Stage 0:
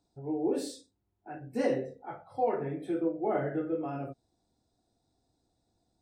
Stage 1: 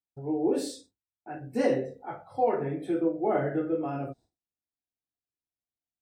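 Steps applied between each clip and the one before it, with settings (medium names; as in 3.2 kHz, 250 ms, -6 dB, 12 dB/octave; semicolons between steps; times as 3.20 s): expander -54 dBFS; trim +3.5 dB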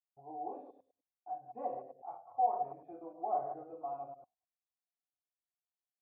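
chunks repeated in reverse 101 ms, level -8 dB; cascade formant filter a; trim +1 dB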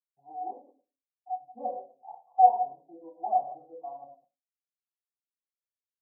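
reverberation RT60 0.45 s, pre-delay 3 ms, DRR 2.5 dB; spectral contrast expander 1.5:1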